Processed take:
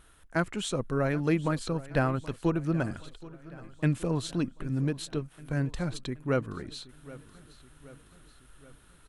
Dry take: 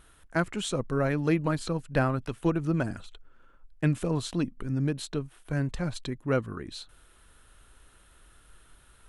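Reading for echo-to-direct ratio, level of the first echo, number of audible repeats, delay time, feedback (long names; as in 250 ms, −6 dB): −17.5 dB, −19.0 dB, 4, 775 ms, 55%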